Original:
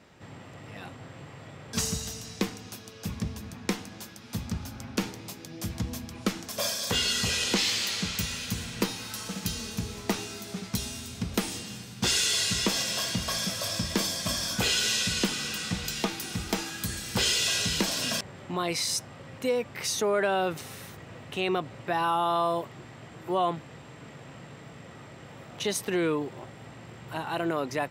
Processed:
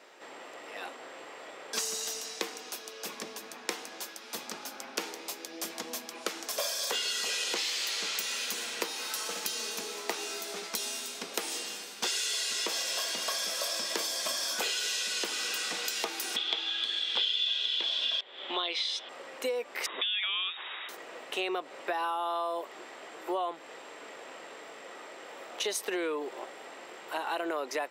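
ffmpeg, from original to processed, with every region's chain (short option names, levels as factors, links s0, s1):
-filter_complex "[0:a]asettb=1/sr,asplit=3[s0][s1][s2];[s0]atrim=end=16.364[s3];[s1]atrim=start=16.36:end=19.09,asetpts=PTS-STARTPTS,afade=t=in:d=0.004:c=qsin,afade=t=out:st=2.726:d=0.004:c=qsin,lowpass=f=3400:t=q:w=15,equalizer=f=160:t=o:w=0.58:g=-9.5[s4];[s2]atrim=start=19.086[s5];[s3][s4]acrossfade=d=0.004:c1=hsin:c2=qsin[s6];[s6][s5]acrossfade=d=0.004:c1=qsin:c2=hsin,asettb=1/sr,asplit=3[s7][s8][s9];[s7]atrim=end=19.864[s10];[s8]atrim=start=19.86:end=20.89,asetpts=PTS-STARTPTS,afade=t=in:d=0.004:c=qsin,afade=t=out:st=1.026:d=0.004:c=qsin,tiltshelf=f=680:g=-4.5,lowpass=f=3300:t=q:w=0.5098,lowpass=f=3300:t=q:w=0.6013,lowpass=f=3300:t=q:w=0.9,lowpass=f=3300:t=q:w=2.563,afreqshift=-3900[s11];[s9]atrim=start=20.886[s12];[s10][s11]acrossfade=d=0.004:c1=hsin:c2=qsin[s13];[s13][s12]acrossfade=d=0.004:c1=qsin:c2=hsin,highpass=f=370:w=0.5412,highpass=f=370:w=1.3066,acompressor=threshold=0.0224:ratio=6,volume=1.5"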